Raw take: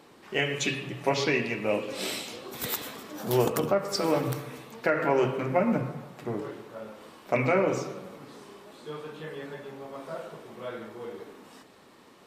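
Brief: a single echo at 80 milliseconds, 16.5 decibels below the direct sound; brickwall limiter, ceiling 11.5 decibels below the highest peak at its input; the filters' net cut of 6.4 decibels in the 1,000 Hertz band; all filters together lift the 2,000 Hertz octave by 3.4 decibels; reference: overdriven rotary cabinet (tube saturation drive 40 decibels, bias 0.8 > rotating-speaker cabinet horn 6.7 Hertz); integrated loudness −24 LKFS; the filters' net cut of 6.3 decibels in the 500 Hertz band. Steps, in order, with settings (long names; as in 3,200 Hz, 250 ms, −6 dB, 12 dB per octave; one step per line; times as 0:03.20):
parametric band 500 Hz −6 dB
parametric band 1,000 Hz −9 dB
parametric band 2,000 Hz +6.5 dB
brickwall limiter −21 dBFS
single-tap delay 80 ms −16.5 dB
tube saturation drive 40 dB, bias 0.8
rotating-speaker cabinet horn 6.7 Hz
level +22 dB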